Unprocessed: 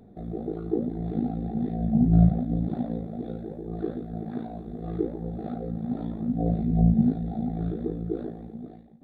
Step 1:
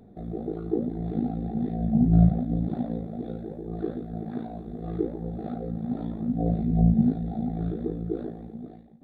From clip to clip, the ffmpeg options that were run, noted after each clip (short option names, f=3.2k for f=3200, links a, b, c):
-af anull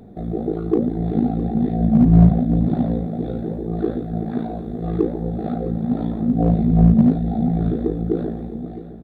-filter_complex "[0:a]asplit=2[a][b];[b]asoftclip=type=hard:threshold=-19dB,volume=-3dB[c];[a][c]amix=inputs=2:normalize=0,aecho=1:1:661|1322|1983|2644:0.178|0.0711|0.0285|0.0114,volume=4dB"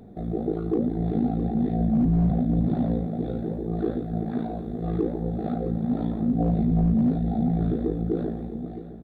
-af "alimiter=limit=-12dB:level=0:latency=1:release=13,volume=-3.5dB"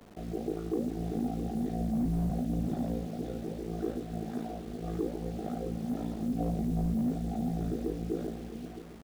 -filter_complex "[0:a]equalizer=f=130:t=o:w=1.8:g=-4.5,acrossover=split=390[a][b];[a]acrusher=bits=7:mix=0:aa=0.000001[c];[c][b]amix=inputs=2:normalize=0,volume=-6dB"